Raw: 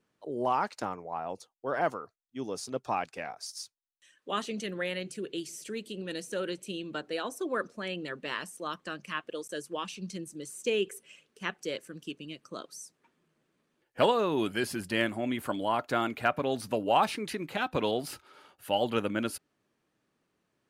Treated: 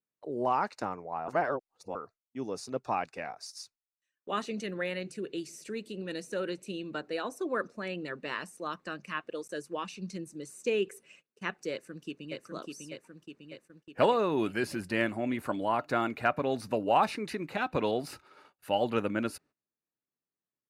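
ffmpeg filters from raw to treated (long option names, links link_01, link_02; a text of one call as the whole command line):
ffmpeg -i in.wav -filter_complex "[0:a]asplit=2[link_01][link_02];[link_02]afade=type=in:start_time=11.71:duration=0.01,afade=type=out:start_time=12.38:duration=0.01,aecho=0:1:600|1200|1800|2400|3000|3600|4200|4800|5400|6000:0.668344|0.434424|0.282375|0.183544|0.119304|0.0775473|0.0504058|0.0327637|0.0212964|0.0138427[link_03];[link_01][link_03]amix=inputs=2:normalize=0,asplit=3[link_04][link_05][link_06];[link_04]atrim=end=1.282[link_07];[link_05]atrim=start=1.278:end=1.952,asetpts=PTS-STARTPTS,areverse[link_08];[link_06]atrim=start=1.948[link_09];[link_07][link_08]acrossfade=duration=0.004:curve1=hsin:curve2=hsin[link_10];[link_10][link_09]acrossfade=duration=0.004:curve1=hsin:curve2=hsin,bandreject=frequency=3200:width=6.2,agate=range=-22dB:threshold=-56dB:ratio=16:detection=peak,highshelf=frequency=6800:gain=-8.5" out.wav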